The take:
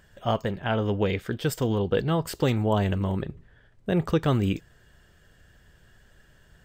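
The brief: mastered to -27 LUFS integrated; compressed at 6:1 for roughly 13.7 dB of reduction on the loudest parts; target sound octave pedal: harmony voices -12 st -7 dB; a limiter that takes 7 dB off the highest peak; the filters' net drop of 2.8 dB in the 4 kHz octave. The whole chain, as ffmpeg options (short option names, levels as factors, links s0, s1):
-filter_complex "[0:a]equalizer=f=4000:t=o:g=-4,acompressor=threshold=0.02:ratio=6,alimiter=level_in=1.88:limit=0.0631:level=0:latency=1,volume=0.531,asplit=2[s0][s1];[s1]asetrate=22050,aresample=44100,atempo=2,volume=0.447[s2];[s0][s2]amix=inputs=2:normalize=0,volume=3.98"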